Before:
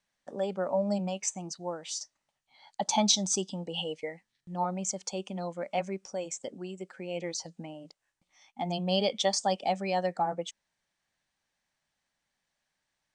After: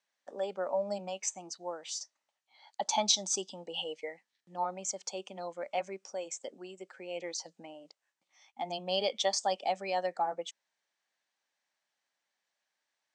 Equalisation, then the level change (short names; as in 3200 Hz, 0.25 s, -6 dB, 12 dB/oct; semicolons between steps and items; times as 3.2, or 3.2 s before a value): HPF 380 Hz 12 dB/oct; LPF 8500 Hz 24 dB/oct; -2.0 dB